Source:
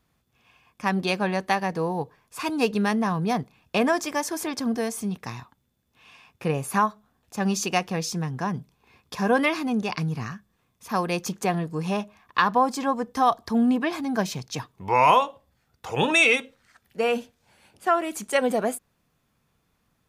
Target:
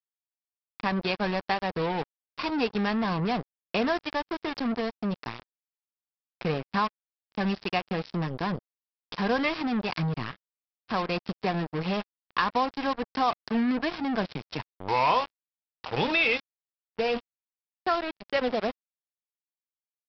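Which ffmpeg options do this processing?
-af "acompressor=threshold=-50dB:ratio=1.5,aresample=11025,acrusher=bits=5:mix=0:aa=0.5,aresample=44100,volume=6.5dB"

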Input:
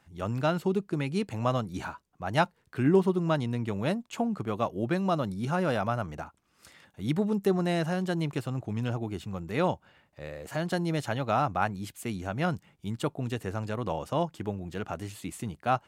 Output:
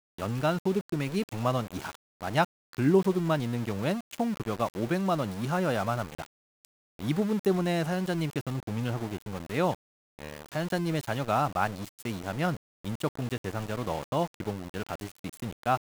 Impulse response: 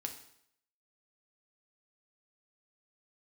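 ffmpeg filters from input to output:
-af "aeval=exprs='val(0)*gte(abs(val(0)),0.0158)':c=same"

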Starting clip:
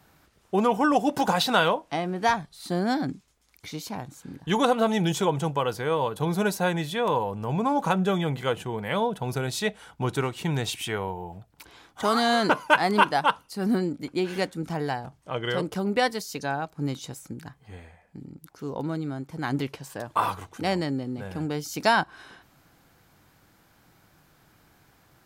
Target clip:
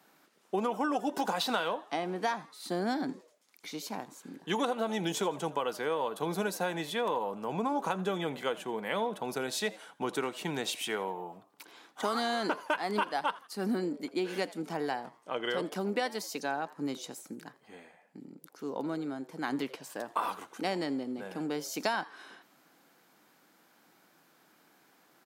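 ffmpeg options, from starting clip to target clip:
-filter_complex "[0:a]highpass=f=210:w=0.5412,highpass=f=210:w=1.3066,acompressor=threshold=-24dB:ratio=6,asplit=4[a][b][c][d];[b]adelay=83,afreqshift=110,volume=-20dB[e];[c]adelay=166,afreqshift=220,volume=-27.7dB[f];[d]adelay=249,afreqshift=330,volume=-35.5dB[g];[a][e][f][g]amix=inputs=4:normalize=0,volume=-3dB"

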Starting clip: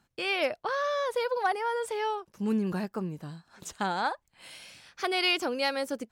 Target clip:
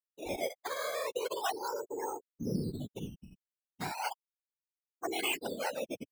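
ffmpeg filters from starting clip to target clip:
-af "afftfilt=real='re*gte(hypot(re,im),0.112)':imag='im*gte(hypot(re,im),0.112)':win_size=1024:overlap=0.75,acrusher=samples=11:mix=1:aa=0.000001:lfo=1:lforange=11:lforate=0.36,afftfilt=real='hypot(re,im)*cos(2*PI*random(0))':imag='hypot(re,im)*sin(2*PI*random(1))':win_size=512:overlap=0.75"

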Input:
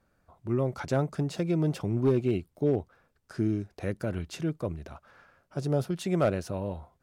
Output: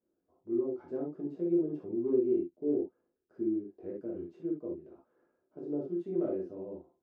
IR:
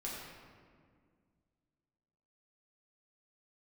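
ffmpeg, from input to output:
-filter_complex "[0:a]bandpass=f=350:t=q:w=3.5:csg=0[a];[1:a]atrim=start_sample=2205,afade=t=out:st=0.16:d=0.01,atrim=end_sample=7497,asetrate=61740,aresample=44100[b];[a][b]afir=irnorm=-1:irlink=0,volume=2.5dB"

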